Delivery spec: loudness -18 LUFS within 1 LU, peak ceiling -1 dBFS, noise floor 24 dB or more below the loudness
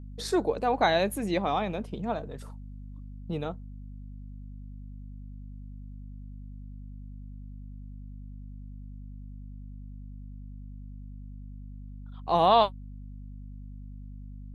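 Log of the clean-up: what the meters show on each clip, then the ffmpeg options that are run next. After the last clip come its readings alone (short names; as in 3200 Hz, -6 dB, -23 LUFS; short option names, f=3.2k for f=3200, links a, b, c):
hum 50 Hz; harmonics up to 250 Hz; hum level -40 dBFS; loudness -27.5 LUFS; peak -8.5 dBFS; loudness target -18.0 LUFS
-> -af "bandreject=f=50:t=h:w=6,bandreject=f=100:t=h:w=6,bandreject=f=150:t=h:w=6,bandreject=f=200:t=h:w=6,bandreject=f=250:t=h:w=6"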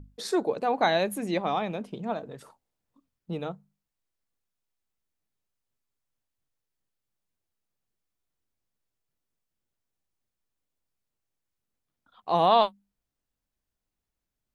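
hum none; loudness -27.0 LUFS; peak -8.5 dBFS; loudness target -18.0 LUFS
-> -af "volume=9dB,alimiter=limit=-1dB:level=0:latency=1"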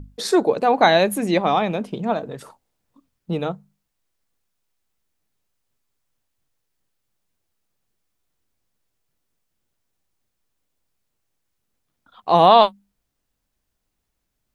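loudness -18.5 LUFS; peak -1.0 dBFS; noise floor -77 dBFS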